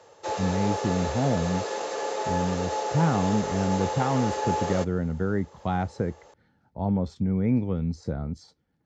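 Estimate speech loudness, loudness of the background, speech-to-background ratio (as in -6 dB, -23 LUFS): -28.0 LUFS, -30.5 LUFS, 2.5 dB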